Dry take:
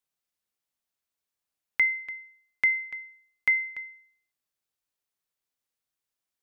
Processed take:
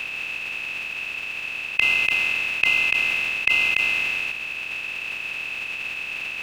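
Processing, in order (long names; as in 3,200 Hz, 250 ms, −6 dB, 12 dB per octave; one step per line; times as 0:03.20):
compressor on every frequency bin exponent 0.2
formants moved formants +4 semitones
multiband upward and downward compressor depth 40%
level +2.5 dB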